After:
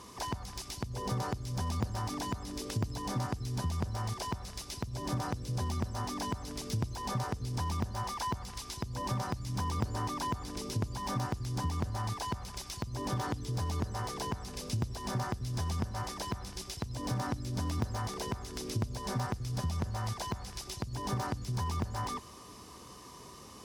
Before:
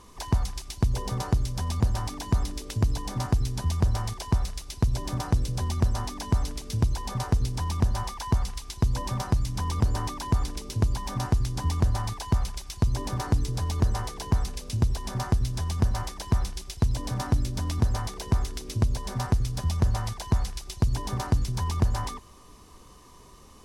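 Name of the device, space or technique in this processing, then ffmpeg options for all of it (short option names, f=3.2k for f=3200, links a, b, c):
broadcast voice chain: -filter_complex "[0:a]highpass=94,deesser=0.9,acompressor=threshold=-33dB:ratio=4,equalizer=f=5.1k:t=o:w=0.27:g=4.5,alimiter=limit=-21dB:level=0:latency=1:release=254,asettb=1/sr,asplit=3[a][b][c];[a]atrim=end=13.104[d];[b]atrim=start=13.1:end=13.52,asetpts=PTS-STARTPTS,afade=t=in:d=0.004:c=qsin,afade=t=out:st=0.416:d=0.004:c=qsin,equalizer=f=3.3k:t=o:w=0.26:g=6[e];[c]atrim=start=13.516[f];[d][e]acrossfade=d=0.004:c1=hsin:c2=qsin[g];[g][f]acrossfade=d=0.004:c1=qsin:c2=hsin,volume=2.5dB"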